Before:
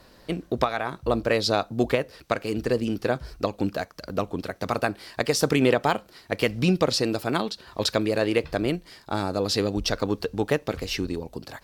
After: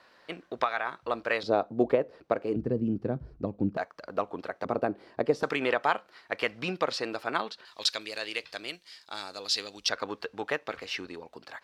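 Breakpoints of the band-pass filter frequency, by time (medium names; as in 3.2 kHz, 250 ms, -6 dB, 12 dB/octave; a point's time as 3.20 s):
band-pass filter, Q 0.83
1.6 kHz
from 1.43 s 480 Hz
from 2.56 s 170 Hz
from 3.77 s 970 Hz
from 4.65 s 390 Hz
from 5.43 s 1.4 kHz
from 7.65 s 4.1 kHz
from 9.89 s 1.6 kHz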